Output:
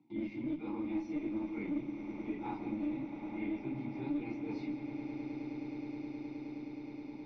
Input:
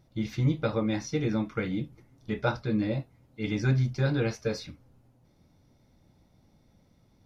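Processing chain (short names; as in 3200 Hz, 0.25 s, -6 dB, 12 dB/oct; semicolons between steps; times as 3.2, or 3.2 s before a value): phase scrambler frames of 0.1 s; gate with hold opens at -53 dBFS; HPF 110 Hz 24 dB/oct; high shelf 5900 Hz +11 dB; reverse; compressor 5:1, threshold -36 dBFS, peak gain reduction 15.5 dB; reverse; vowel filter u; in parallel at -3 dB: one-sided clip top -52.5 dBFS; on the sum: air absorption 160 m; swelling echo 0.105 s, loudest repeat 8, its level -16 dB; reverb RT60 0.65 s, pre-delay 0.118 s, DRR 11 dB; three-band squash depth 70%; gain +6.5 dB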